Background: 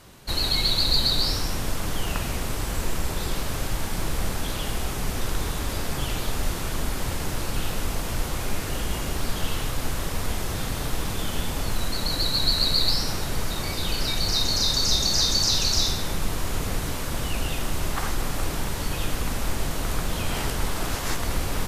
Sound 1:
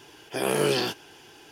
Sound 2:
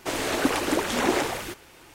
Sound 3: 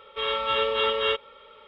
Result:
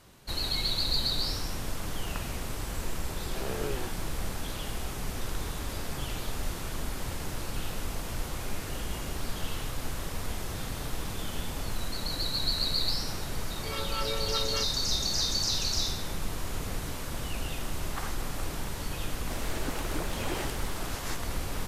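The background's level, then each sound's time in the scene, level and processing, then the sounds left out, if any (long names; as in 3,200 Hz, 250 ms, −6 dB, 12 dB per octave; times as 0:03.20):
background −7 dB
0:03.00: mix in 1 −11.5 dB + low-pass filter 2,200 Hz
0:13.48: mix in 3 −8 dB + phaser with staggered stages 4.8 Hz
0:19.23: mix in 2 −13.5 dB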